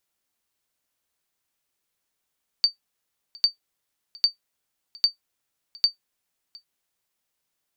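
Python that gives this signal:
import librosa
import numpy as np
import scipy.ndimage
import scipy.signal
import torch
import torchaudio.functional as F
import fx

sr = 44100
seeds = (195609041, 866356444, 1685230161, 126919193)

y = fx.sonar_ping(sr, hz=4600.0, decay_s=0.12, every_s=0.8, pings=5, echo_s=0.71, echo_db=-25.5, level_db=-9.0)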